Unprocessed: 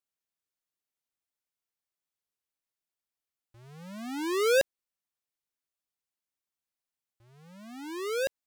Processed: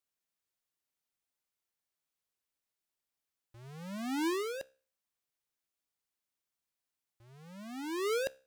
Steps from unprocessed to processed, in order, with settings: negative-ratio compressor -31 dBFS, ratio -1; resonator 66 Hz, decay 0.39 s, harmonics all, mix 30%

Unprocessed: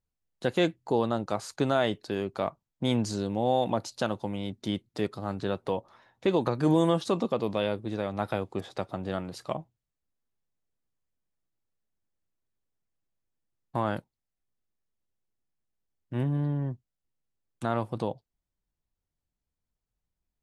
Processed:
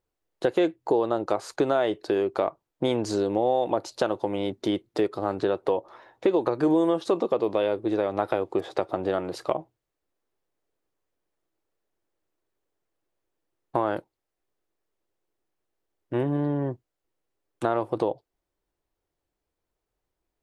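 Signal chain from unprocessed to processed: EQ curve 230 Hz 0 dB, 330 Hz +14 dB, 6600 Hz +2 dB; compressor 3:1, threshold -22 dBFS, peak gain reduction 11 dB

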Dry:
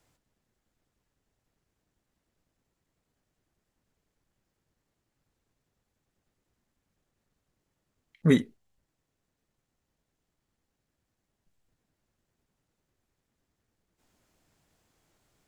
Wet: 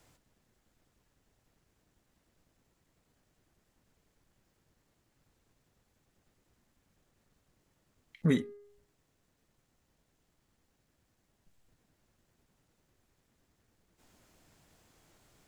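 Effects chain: de-hum 409.3 Hz, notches 5; compressor 2:1, threshold -39 dBFS, peak gain reduction 12.5 dB; gain +6 dB

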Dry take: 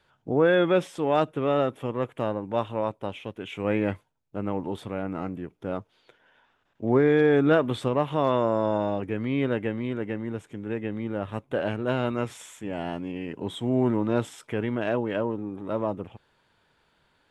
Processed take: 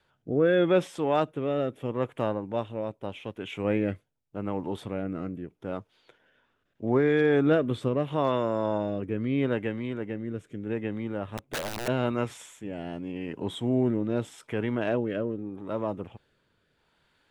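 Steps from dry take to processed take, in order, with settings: rotary speaker horn 0.8 Hz; 11.37–11.88 wrapped overs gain 26.5 dB

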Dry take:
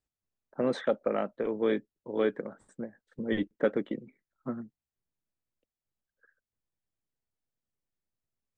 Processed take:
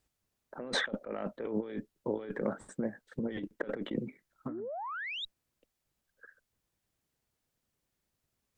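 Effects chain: painted sound rise, 4.49–5.25, 270–3900 Hz -29 dBFS; added harmonics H 4 -30 dB, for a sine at -13.5 dBFS; negative-ratio compressor -39 dBFS, ratio -1; gain +2 dB

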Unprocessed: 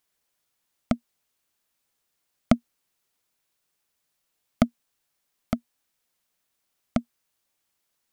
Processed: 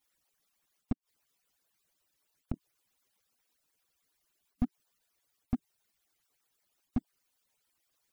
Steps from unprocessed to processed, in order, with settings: median-filter separation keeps percussive; 0.92–2.54 flipped gate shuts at -21 dBFS, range -28 dB; slew limiter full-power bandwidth 9.7 Hz; gain +3 dB

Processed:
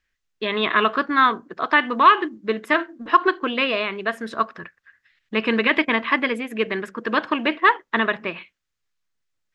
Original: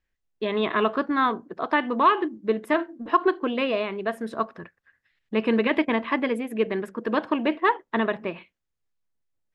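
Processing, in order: band shelf 2900 Hz +8.5 dB 3 oct

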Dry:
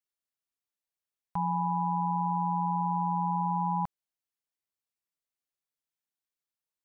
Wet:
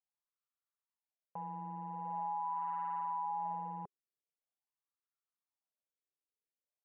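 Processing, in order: added harmonics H 3 -26 dB, 4 -31 dB, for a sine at -21 dBFS; wah 0.44 Hz 390–1300 Hz, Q 4.6; limiter -36 dBFS, peak gain reduction 9 dB; gain +4.5 dB

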